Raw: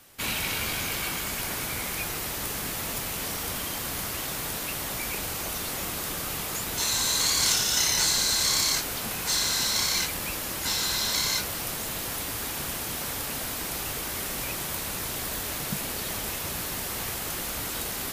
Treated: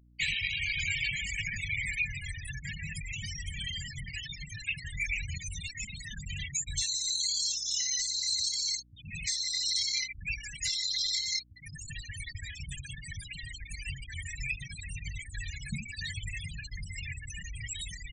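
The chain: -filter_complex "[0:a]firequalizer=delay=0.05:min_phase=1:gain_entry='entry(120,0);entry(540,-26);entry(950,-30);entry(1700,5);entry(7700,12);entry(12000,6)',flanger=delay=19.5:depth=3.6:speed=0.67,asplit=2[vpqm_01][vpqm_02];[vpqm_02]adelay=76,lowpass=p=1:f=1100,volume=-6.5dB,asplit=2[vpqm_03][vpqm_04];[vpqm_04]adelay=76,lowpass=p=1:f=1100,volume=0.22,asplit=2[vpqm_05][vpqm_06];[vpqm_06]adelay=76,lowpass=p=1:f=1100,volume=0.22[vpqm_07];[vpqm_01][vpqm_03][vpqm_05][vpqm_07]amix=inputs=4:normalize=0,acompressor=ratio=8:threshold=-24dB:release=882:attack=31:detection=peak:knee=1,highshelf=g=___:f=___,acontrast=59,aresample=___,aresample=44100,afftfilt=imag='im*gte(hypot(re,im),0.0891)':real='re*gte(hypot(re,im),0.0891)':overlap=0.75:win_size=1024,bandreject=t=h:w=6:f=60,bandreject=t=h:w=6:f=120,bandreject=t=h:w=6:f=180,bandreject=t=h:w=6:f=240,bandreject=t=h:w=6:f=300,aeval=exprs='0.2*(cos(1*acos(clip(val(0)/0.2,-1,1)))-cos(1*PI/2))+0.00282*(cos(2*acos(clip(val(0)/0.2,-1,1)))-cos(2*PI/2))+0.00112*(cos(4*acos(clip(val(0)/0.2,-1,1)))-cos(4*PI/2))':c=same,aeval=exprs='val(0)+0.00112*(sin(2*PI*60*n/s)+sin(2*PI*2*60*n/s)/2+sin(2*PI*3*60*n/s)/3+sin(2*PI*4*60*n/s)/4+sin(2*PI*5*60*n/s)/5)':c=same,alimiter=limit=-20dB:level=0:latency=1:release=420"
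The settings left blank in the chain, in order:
-8.5, 4600, 32000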